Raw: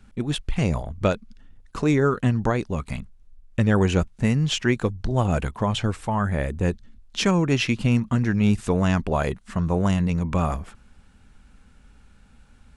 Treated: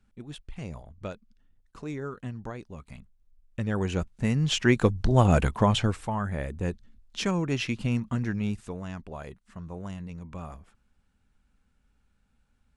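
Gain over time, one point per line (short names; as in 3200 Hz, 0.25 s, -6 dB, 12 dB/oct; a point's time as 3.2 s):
2.83 s -15.5 dB
4.15 s -6.5 dB
4.85 s +2 dB
5.65 s +2 dB
6.23 s -7 dB
8.29 s -7 dB
8.82 s -16.5 dB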